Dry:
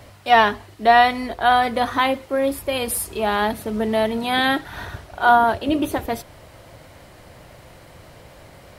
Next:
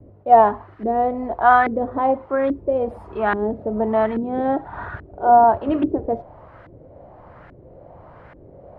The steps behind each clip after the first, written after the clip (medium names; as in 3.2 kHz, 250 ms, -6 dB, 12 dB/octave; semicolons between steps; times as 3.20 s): gate with hold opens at -38 dBFS; LFO low-pass saw up 1.2 Hz 320–1700 Hz; trim -1 dB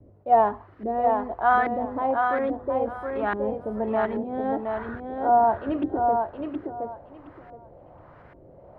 thinning echo 719 ms, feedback 21%, high-pass 190 Hz, level -4 dB; trim -6.5 dB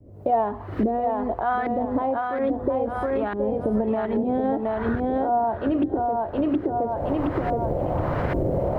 recorder AGC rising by 78 dB/s; peaking EQ 1.4 kHz -6.5 dB 2.2 oct